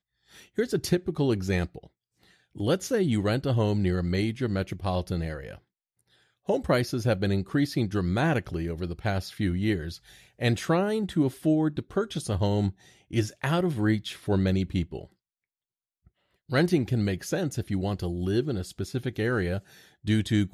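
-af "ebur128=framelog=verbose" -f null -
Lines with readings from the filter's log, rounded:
Integrated loudness:
  I:         -27.7 LUFS
  Threshold: -38.4 LUFS
Loudness range:
  LRA:         2.4 LU
  Threshold: -48.5 LUFS
  LRA low:   -29.9 LUFS
  LRA high:  -27.5 LUFS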